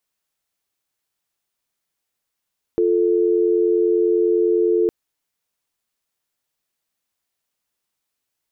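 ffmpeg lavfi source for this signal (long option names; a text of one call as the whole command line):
ffmpeg -f lavfi -i "aevalsrc='0.141*(sin(2*PI*350*t)+sin(2*PI*440*t))':duration=2.11:sample_rate=44100" out.wav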